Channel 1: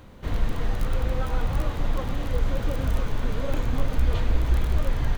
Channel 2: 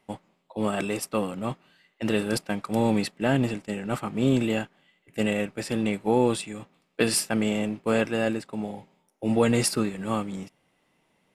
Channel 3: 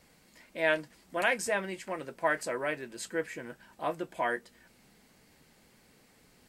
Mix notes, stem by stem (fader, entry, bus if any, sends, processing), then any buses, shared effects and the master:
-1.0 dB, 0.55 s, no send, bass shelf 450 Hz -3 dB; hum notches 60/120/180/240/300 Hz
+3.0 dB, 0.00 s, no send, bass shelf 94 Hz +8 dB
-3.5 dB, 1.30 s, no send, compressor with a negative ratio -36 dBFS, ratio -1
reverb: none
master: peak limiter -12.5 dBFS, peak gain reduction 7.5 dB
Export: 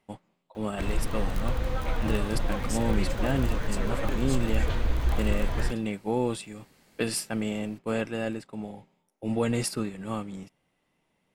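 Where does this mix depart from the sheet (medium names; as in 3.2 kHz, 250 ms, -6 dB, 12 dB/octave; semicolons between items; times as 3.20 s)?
stem 1: missing hum notches 60/120/180/240/300 Hz; stem 2 +3.0 dB -> -6.0 dB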